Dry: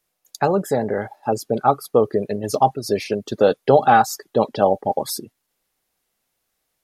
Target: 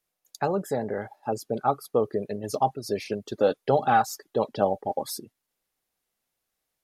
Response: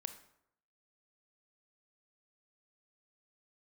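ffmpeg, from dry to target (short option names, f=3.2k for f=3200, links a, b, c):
-filter_complex "[0:a]asplit=3[a][b][c];[a]afade=t=out:st=3.03:d=0.02[d];[b]aphaser=in_gain=1:out_gain=1:delay=3.9:decay=0.26:speed=1.3:type=triangular,afade=t=in:st=3.03:d=0.02,afade=t=out:st=5.16:d=0.02[e];[c]afade=t=in:st=5.16:d=0.02[f];[d][e][f]amix=inputs=3:normalize=0,volume=-7.5dB"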